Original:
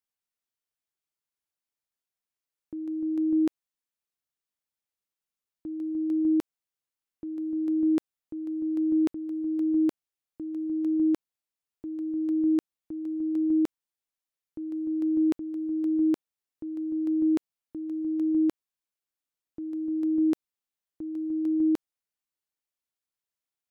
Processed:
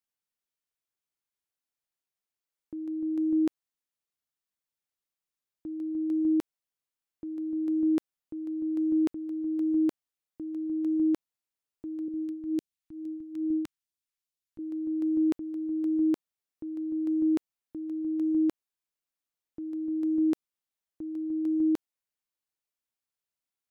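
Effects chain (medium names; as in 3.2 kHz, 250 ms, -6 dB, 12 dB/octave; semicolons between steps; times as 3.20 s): 12.08–14.59 s: phase shifter stages 2, 2.3 Hz, lowest notch 400–1100 Hz; trim -1.5 dB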